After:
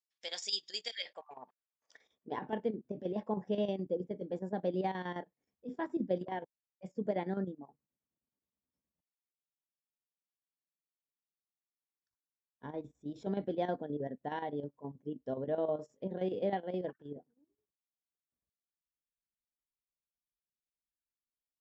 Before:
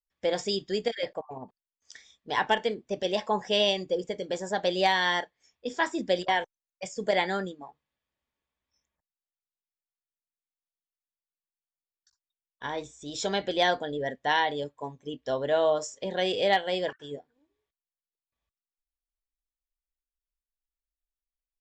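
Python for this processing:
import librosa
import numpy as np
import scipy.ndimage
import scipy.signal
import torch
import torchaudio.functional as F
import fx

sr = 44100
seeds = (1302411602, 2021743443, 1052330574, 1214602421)

y = fx.chopper(x, sr, hz=9.5, depth_pct=65, duty_pct=70)
y = fx.filter_sweep_bandpass(y, sr, from_hz=5200.0, to_hz=210.0, start_s=0.89, end_s=2.47, q=1.2)
y = F.gain(torch.from_numpy(y), 1.5).numpy()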